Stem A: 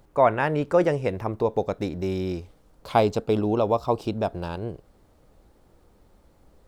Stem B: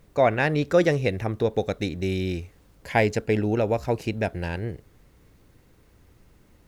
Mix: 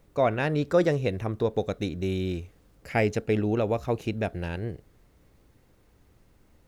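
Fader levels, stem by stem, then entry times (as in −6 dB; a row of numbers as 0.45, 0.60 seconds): −10.0, −5.0 decibels; 0.00, 0.00 seconds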